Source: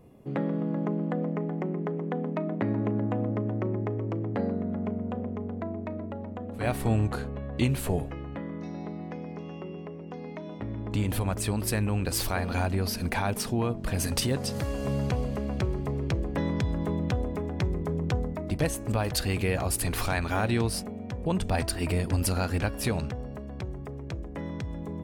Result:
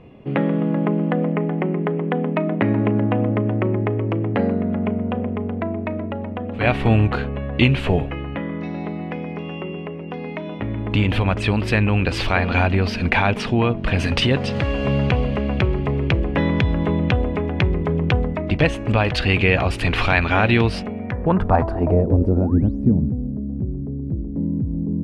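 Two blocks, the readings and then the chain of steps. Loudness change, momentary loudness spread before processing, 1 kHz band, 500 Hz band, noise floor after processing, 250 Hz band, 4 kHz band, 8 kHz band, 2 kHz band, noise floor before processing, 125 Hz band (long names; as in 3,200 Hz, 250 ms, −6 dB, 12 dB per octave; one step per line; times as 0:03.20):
+9.5 dB, 10 LU, +10.0 dB, +9.5 dB, −30 dBFS, +9.5 dB, +8.5 dB, can't be measured, +13.0 dB, −39 dBFS, +9.0 dB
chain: sound drawn into the spectrogram rise, 0:22.41–0:22.85, 530–11,000 Hz −30 dBFS
low-pass filter sweep 2,800 Hz → 250 Hz, 0:20.87–0:22.63
level +9 dB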